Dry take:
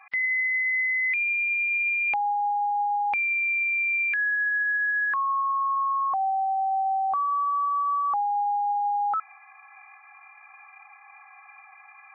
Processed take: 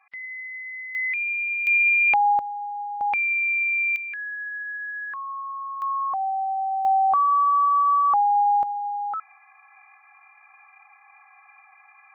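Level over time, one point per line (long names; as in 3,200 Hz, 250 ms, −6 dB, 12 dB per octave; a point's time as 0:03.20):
−10.5 dB
from 0:00.95 −1 dB
from 0:01.67 +6.5 dB
from 0:02.39 −6 dB
from 0:03.01 +2 dB
from 0:03.96 −7.5 dB
from 0:05.82 −0.5 dB
from 0:06.85 +6 dB
from 0:08.63 −3 dB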